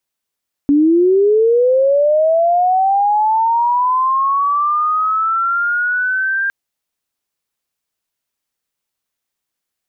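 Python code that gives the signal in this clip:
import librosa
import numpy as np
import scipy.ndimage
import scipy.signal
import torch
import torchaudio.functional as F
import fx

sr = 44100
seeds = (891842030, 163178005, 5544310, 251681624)

y = fx.chirp(sr, length_s=5.81, from_hz=280.0, to_hz=1600.0, law='linear', from_db=-8.0, to_db=-14.5)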